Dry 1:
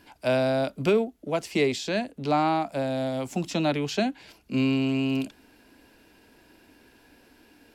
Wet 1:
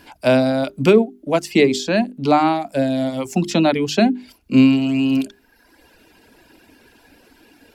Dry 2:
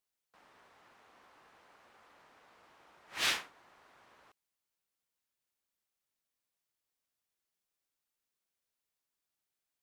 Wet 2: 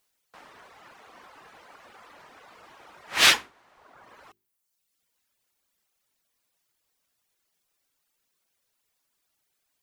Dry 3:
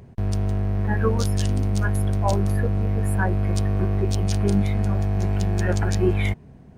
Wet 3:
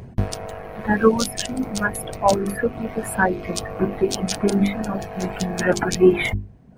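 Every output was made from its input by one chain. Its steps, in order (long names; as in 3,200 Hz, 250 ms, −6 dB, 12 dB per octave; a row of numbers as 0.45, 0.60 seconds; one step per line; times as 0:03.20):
reverb reduction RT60 1.1 s
mains-hum notches 50/100/150/200/250/300/350/400 Hz
dynamic equaliser 250 Hz, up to +6 dB, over −43 dBFS, Q 1.8
normalise the peak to −2 dBFS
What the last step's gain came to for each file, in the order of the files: +8.5, +14.5, +8.0 decibels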